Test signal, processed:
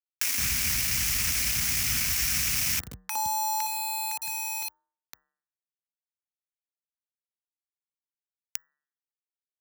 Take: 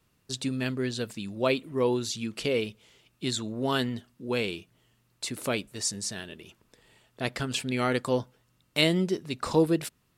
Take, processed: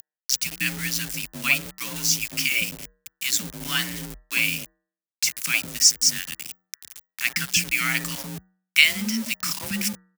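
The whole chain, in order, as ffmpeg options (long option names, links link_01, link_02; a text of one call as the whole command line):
ffmpeg -i in.wav -filter_complex "[0:a]firequalizer=gain_entry='entry(120,0);entry(210,1);entry(340,-24);entry(740,-8);entry(1300,2);entry(2300,10);entry(3800,-9);entry(5400,7);entry(8500,-8)':delay=0.05:min_phase=1,acompressor=mode=upward:threshold=-31dB:ratio=2.5,acrossover=split=240|960[link_01][link_02][link_03];[link_02]adelay=60[link_04];[link_01]adelay=160[link_05];[link_05][link_04][link_03]amix=inputs=3:normalize=0,aeval=exprs='val(0)*gte(abs(val(0)),0.0158)':channel_layout=same,bandreject=frequency=144.3:width_type=h:width=4,bandreject=frequency=288.6:width_type=h:width=4,bandreject=frequency=432.9:width_type=h:width=4,bandreject=frequency=577.2:width_type=h:width=4,bandreject=frequency=721.5:width_type=h:width=4,bandreject=frequency=865.8:width_type=h:width=4,bandreject=frequency=1010.1:width_type=h:width=4,bandreject=frequency=1154.4:width_type=h:width=4,bandreject=frequency=1298.7:width_type=h:width=4,bandreject=frequency=1443:width_type=h:width=4,bandreject=frequency=1587.3:width_type=h:width=4,bandreject=frequency=1731.6:width_type=h:width=4,bandreject=frequency=1875.9:width_type=h:width=4,afreqshift=41,crystalizer=i=6.5:c=0,lowshelf=frequency=330:gain=7,volume=-3dB" out.wav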